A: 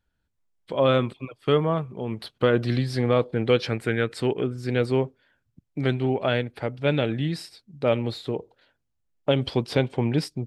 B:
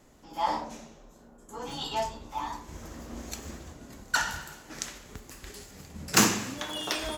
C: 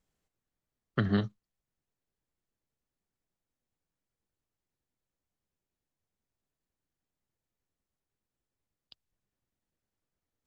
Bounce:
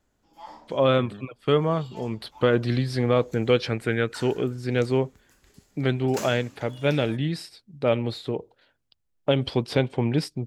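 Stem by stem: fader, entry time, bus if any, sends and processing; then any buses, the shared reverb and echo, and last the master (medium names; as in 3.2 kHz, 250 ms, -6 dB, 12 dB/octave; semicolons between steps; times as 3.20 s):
0.0 dB, 0.00 s, no send, none
-15.0 dB, 0.00 s, no send, none
-4.5 dB, 0.00 s, no send, spectral gate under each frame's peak -30 dB strong; compression 3:1, threshold -38 dBFS, peak gain reduction 11.5 dB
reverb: none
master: none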